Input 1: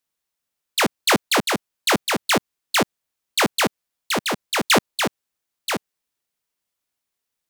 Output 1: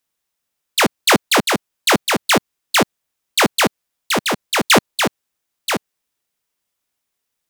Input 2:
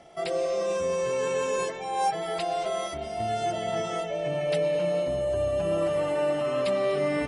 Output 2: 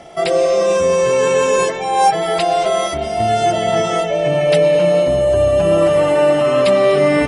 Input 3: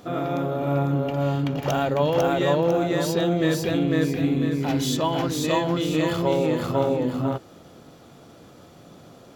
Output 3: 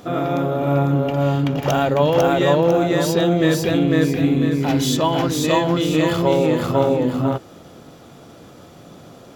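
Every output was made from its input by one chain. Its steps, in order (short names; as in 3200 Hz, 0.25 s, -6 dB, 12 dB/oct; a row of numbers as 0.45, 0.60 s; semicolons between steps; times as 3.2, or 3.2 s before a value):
notch 4300 Hz, Q 29; normalise peaks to -3 dBFS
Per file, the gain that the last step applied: +4.5, +13.0, +5.0 dB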